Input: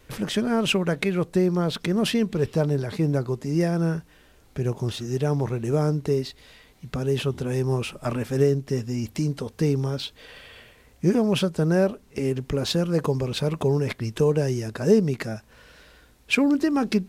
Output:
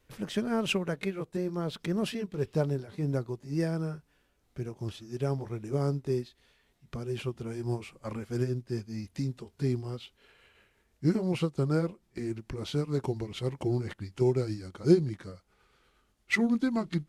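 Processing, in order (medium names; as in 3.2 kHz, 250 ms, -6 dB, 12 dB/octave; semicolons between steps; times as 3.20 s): pitch bend over the whole clip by -3.5 st starting unshifted; upward expansion 1.5:1, over -38 dBFS; trim -2 dB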